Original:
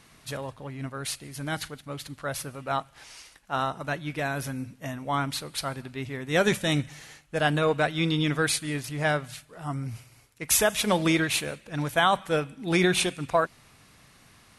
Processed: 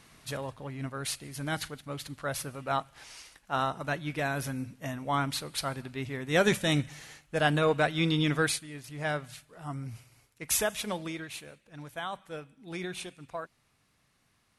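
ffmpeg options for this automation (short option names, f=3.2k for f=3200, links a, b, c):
-af "volume=7dB,afade=t=out:st=8.43:d=0.25:silence=0.237137,afade=t=in:st=8.68:d=0.49:silence=0.375837,afade=t=out:st=10.57:d=0.54:silence=0.334965"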